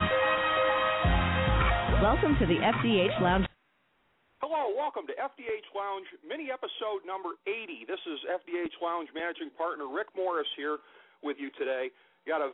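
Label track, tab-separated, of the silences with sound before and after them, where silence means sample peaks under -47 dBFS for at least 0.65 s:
3.460000	4.410000	silence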